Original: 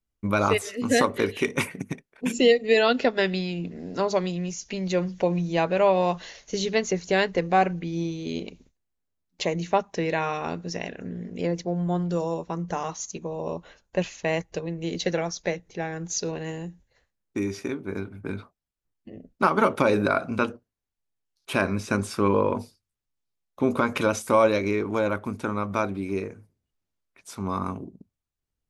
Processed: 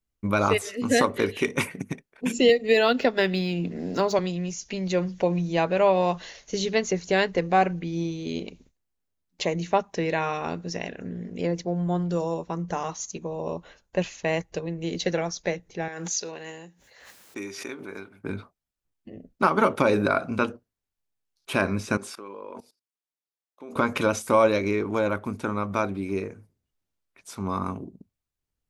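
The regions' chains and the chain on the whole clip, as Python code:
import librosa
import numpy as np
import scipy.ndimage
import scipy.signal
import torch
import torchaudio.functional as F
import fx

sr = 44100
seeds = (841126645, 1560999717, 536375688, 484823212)

y = fx.chain(x, sr, fx.median_filter(points=3),
    fx.band_squash(depth_pct=40), at=(2.49, 4.19))
y = fx.chain(y, sr, fx.highpass(hz=790.0, slope=6),
    fx.pre_swell(db_per_s=49.0), at=(15.88, 18.24))
y = fx.chain(y, sr, fx.highpass(hz=330.0, slope=12),
    fx.level_steps(step_db=20), at=(21.97, 23.76))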